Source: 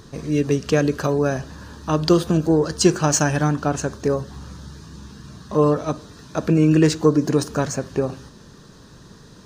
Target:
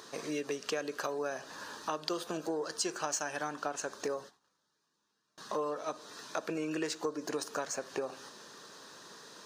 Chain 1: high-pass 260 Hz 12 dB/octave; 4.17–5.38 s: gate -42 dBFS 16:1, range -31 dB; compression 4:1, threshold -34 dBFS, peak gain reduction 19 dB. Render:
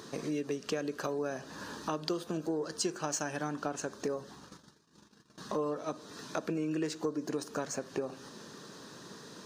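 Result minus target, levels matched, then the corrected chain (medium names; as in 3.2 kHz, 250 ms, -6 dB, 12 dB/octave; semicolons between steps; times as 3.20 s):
250 Hz band +3.5 dB
high-pass 540 Hz 12 dB/octave; 4.17–5.38 s: gate -42 dBFS 16:1, range -31 dB; compression 4:1, threshold -34 dBFS, peak gain reduction 15.5 dB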